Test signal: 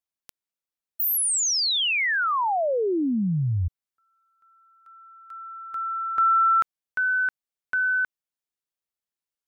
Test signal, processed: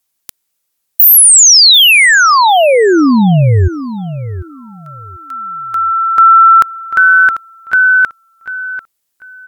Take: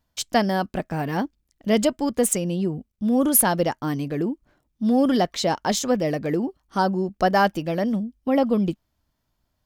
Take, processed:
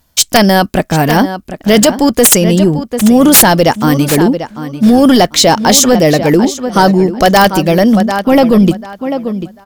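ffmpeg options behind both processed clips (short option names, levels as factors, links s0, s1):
-filter_complex "[0:a]aemphasis=mode=production:type=cd,aeval=exprs='(mod(2.51*val(0)+1,2)-1)/2.51':c=same,asplit=2[s0][s1];[s1]adelay=743,lowpass=f=4300:p=1,volume=0.237,asplit=2[s2][s3];[s3]adelay=743,lowpass=f=4300:p=1,volume=0.23,asplit=2[s4][s5];[s5]adelay=743,lowpass=f=4300:p=1,volume=0.23[s6];[s0][s2][s4][s6]amix=inputs=4:normalize=0,apsyclip=7.5,volume=0.841"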